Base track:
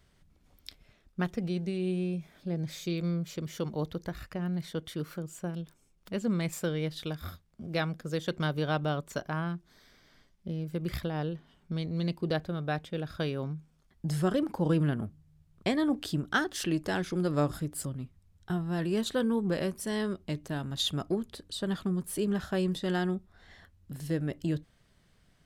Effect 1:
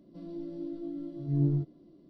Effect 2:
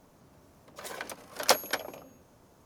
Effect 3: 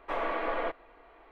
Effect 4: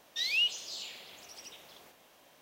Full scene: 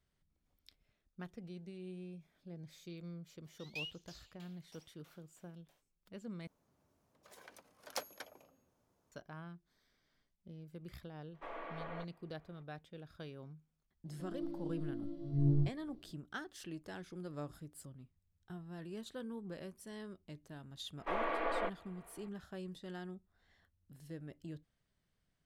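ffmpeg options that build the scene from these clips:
ffmpeg -i bed.wav -i cue0.wav -i cue1.wav -i cue2.wav -i cue3.wav -filter_complex "[3:a]asplit=2[link_01][link_02];[0:a]volume=-16.5dB[link_03];[4:a]aeval=exprs='val(0)*pow(10,-27*if(lt(mod(3.1*n/s,1),2*abs(3.1)/1000),1-mod(3.1*n/s,1)/(2*abs(3.1)/1000),(mod(3.1*n/s,1)-2*abs(3.1)/1000)/(1-2*abs(3.1)/1000))/20)':channel_layout=same[link_04];[1:a]asubboost=boost=12:cutoff=76[link_05];[link_03]asplit=2[link_06][link_07];[link_06]atrim=end=6.474[link_08];[2:a]atrim=end=2.65,asetpts=PTS-STARTPTS,volume=-18dB[link_09];[link_07]atrim=start=9.116[link_10];[link_04]atrim=end=2.41,asetpts=PTS-STARTPTS,volume=-9.5dB,afade=type=in:duration=0.05,afade=type=out:start_time=2.36:duration=0.05,adelay=3430[link_11];[link_01]atrim=end=1.31,asetpts=PTS-STARTPTS,volume=-14.5dB,afade=type=in:duration=0.02,afade=type=out:start_time=1.29:duration=0.02,adelay=11330[link_12];[link_05]atrim=end=2.09,asetpts=PTS-STARTPTS,volume=-3.5dB,afade=type=in:duration=0.004:curve=hsin,afade=type=out:start_time=2.086:duration=0.004:curve=hsin,adelay=14050[link_13];[link_02]atrim=end=1.31,asetpts=PTS-STARTPTS,volume=-4.5dB,afade=type=in:duration=0.004:curve=hsin,afade=type=out:start_time=1.306:duration=0.004:curve=hsin,adelay=20980[link_14];[link_08][link_09]acrossfade=duration=0.004:curve1=hsin:curve2=hsin[link_15];[link_15][link_10]acrossfade=duration=0.004:curve1=hsin:curve2=hsin[link_16];[link_16][link_11][link_12][link_13][link_14]amix=inputs=5:normalize=0" out.wav

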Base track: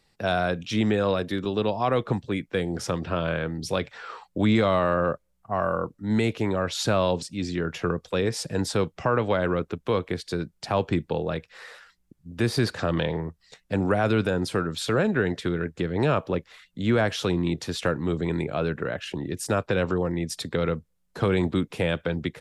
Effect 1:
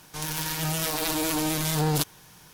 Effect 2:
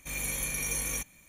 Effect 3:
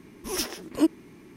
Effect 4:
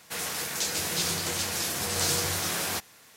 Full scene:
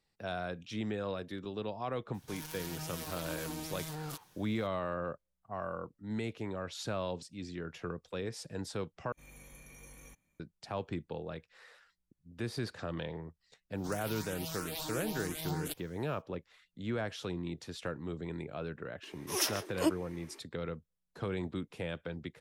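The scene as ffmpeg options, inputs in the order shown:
ffmpeg -i bed.wav -i cue0.wav -i cue1.wav -i cue2.wav -filter_complex "[1:a]asplit=2[link_01][link_02];[0:a]volume=-13.5dB[link_03];[link_01]alimiter=limit=-18.5dB:level=0:latency=1:release=75[link_04];[2:a]highshelf=frequency=2000:gain=-10.5[link_05];[link_02]asplit=2[link_06][link_07];[link_07]afreqshift=3[link_08];[link_06][link_08]amix=inputs=2:normalize=1[link_09];[3:a]highpass=frequency=390:width=0.5412,highpass=frequency=390:width=1.3066[link_10];[link_03]asplit=2[link_11][link_12];[link_11]atrim=end=9.124[link_13];[link_05]atrim=end=1.28,asetpts=PTS-STARTPTS,volume=-15.5dB[link_14];[link_12]atrim=start=10.396[link_15];[link_04]atrim=end=2.53,asetpts=PTS-STARTPTS,volume=-13dB,afade=type=in:duration=0.004:curve=hsin,afade=type=out:start_time=2.526:duration=0.004:curve=hsin,adelay=2140[link_16];[link_09]atrim=end=2.53,asetpts=PTS-STARTPTS,volume=-11dB,afade=type=in:duration=0.1,afade=type=out:start_time=2.43:duration=0.1,adelay=13700[link_17];[link_10]atrim=end=1.36,asetpts=PTS-STARTPTS,volume=-1dB,afade=type=in:duration=0.004:curve=hsin,afade=type=out:start_time=1.356:duration=0.004:curve=hsin,adelay=19030[link_18];[link_13][link_14]acrossfade=duration=0.004:curve1=hsin:curve2=hsin[link_19];[link_19][link_15]acrossfade=duration=0.004:curve1=hsin:curve2=hsin[link_20];[link_20][link_16][link_17][link_18]amix=inputs=4:normalize=0" out.wav

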